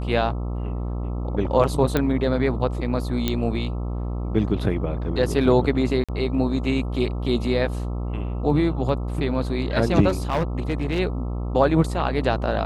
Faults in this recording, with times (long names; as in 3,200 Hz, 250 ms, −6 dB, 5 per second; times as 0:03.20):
mains buzz 60 Hz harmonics 22 −27 dBFS
0:01.97: click −8 dBFS
0:03.28: click −8 dBFS
0:06.04–0:06.09: drop-out 46 ms
0:10.08–0:11.00: clipping −18 dBFS